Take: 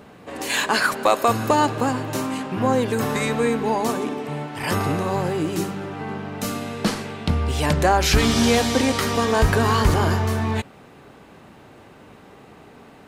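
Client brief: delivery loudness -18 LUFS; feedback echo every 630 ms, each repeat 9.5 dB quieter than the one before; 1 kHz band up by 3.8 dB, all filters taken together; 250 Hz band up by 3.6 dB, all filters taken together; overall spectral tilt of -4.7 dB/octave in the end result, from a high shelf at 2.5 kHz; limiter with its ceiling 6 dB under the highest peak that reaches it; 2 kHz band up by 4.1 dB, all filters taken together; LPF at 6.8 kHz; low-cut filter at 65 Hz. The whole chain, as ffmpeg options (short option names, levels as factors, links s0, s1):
-af "highpass=65,lowpass=6800,equalizer=f=250:t=o:g=4,equalizer=f=1000:t=o:g=4,equalizer=f=2000:t=o:g=7,highshelf=f=2500:g=-7,alimiter=limit=0.376:level=0:latency=1,aecho=1:1:630|1260|1890|2520:0.335|0.111|0.0365|0.012,volume=1.33"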